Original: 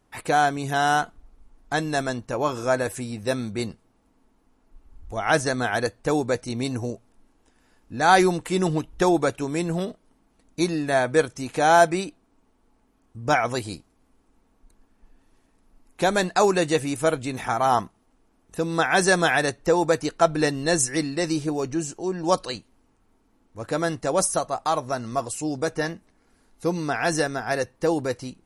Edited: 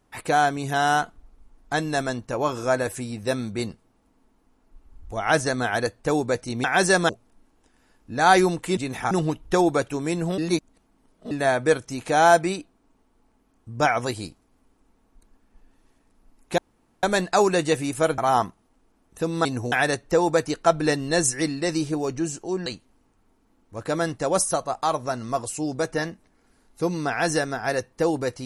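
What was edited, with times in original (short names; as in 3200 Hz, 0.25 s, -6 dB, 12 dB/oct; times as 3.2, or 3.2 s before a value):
6.64–6.91 swap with 18.82–19.27
9.86–10.79 reverse
16.06 insert room tone 0.45 s
17.21–17.55 move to 8.59
22.21–22.49 cut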